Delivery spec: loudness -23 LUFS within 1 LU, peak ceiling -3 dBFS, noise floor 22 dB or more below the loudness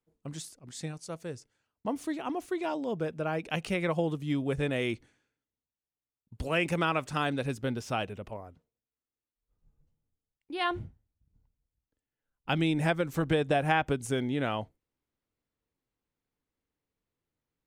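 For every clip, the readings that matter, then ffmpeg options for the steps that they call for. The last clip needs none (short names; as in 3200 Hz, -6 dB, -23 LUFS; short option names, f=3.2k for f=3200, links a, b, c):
loudness -31.5 LUFS; peak -10.0 dBFS; loudness target -23.0 LUFS
-> -af "volume=8.5dB,alimiter=limit=-3dB:level=0:latency=1"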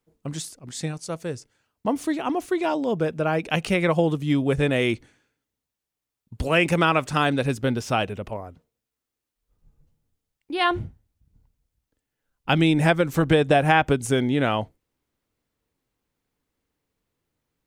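loudness -23.0 LUFS; peak -3.0 dBFS; noise floor -86 dBFS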